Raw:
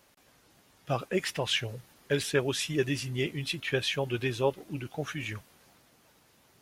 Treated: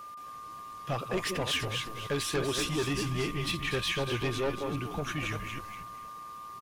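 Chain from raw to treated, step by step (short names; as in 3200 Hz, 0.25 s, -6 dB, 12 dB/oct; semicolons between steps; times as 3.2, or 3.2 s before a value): reverse delay 0.207 s, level -10 dB; in parallel at -1 dB: compressor, threshold -40 dBFS, peak gain reduction 17.5 dB; on the sum: soft clip -25.5 dBFS, distortion -10 dB; whine 1200 Hz -42 dBFS; frequency-shifting echo 0.24 s, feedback 30%, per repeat -110 Hz, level -8.5 dB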